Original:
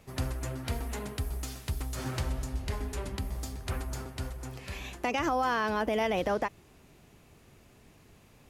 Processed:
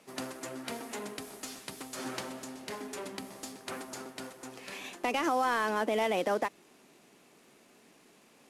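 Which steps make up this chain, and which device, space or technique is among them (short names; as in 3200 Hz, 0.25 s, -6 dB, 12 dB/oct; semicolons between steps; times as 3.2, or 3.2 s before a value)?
early wireless headset (HPF 210 Hz 24 dB/oct; CVSD 64 kbps)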